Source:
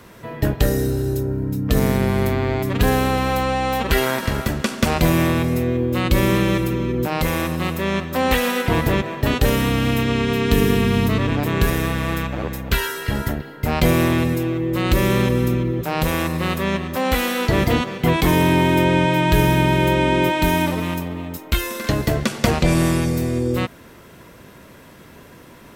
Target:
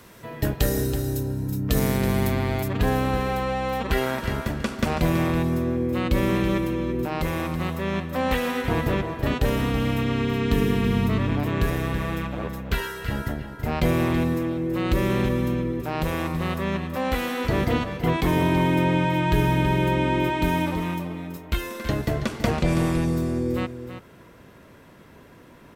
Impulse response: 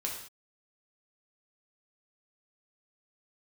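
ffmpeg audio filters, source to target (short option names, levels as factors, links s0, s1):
-af "asetnsamples=n=441:p=0,asendcmd='2.68 highshelf g -7',highshelf=f=3500:g=5.5,aecho=1:1:328:0.299,volume=0.562"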